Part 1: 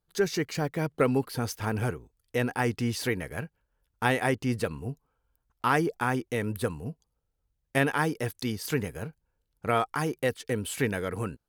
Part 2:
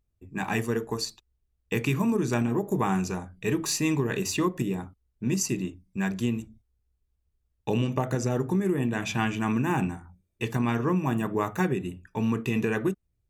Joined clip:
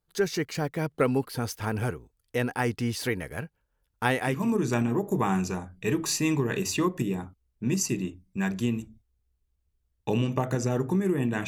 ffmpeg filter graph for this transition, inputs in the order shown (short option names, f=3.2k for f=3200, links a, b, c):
-filter_complex "[0:a]apad=whole_dur=11.47,atrim=end=11.47,atrim=end=4.52,asetpts=PTS-STARTPTS[a];[1:a]atrim=start=1.78:end=9.07,asetpts=PTS-STARTPTS[b];[a][b]acrossfade=d=0.34:c1=tri:c2=tri"